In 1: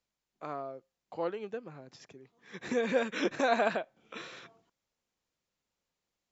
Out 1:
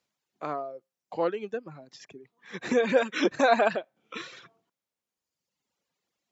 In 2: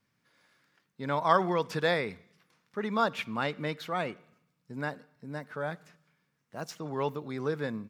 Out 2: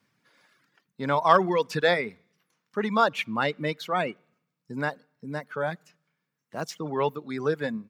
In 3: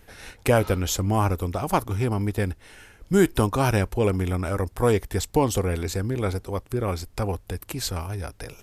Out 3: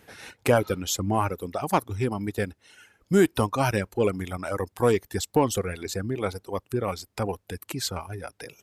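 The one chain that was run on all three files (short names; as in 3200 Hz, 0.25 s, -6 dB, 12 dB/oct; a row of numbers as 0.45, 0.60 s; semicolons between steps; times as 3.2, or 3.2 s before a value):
HPF 120 Hz 12 dB/oct; reverb removal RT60 1.5 s; high shelf 8600 Hz -3.5 dB; in parallel at -7 dB: soft clip -16.5 dBFS; on the sum: match loudness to -27 LUFS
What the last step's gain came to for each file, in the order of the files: +4.0, +3.0, -2.5 dB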